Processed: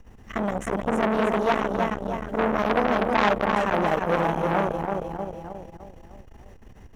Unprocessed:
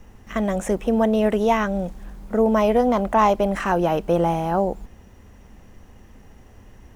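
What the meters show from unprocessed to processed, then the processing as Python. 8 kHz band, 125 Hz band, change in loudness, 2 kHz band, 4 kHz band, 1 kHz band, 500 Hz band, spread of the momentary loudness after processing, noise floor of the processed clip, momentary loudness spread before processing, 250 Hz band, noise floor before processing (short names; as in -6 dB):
n/a, -3.5 dB, -3.5 dB, +3.5 dB, +1.0 dB, -1.5 dB, -4.0 dB, 13 LU, -49 dBFS, 9 LU, -4.5 dB, -48 dBFS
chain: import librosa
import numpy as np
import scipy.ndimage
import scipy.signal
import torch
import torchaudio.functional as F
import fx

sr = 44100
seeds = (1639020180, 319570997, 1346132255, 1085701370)

y = fx.high_shelf(x, sr, hz=5700.0, db=-5.0)
y = fx.echo_feedback(y, sr, ms=310, feedback_pct=50, wet_db=-4)
y = fx.transformer_sat(y, sr, knee_hz=1700.0)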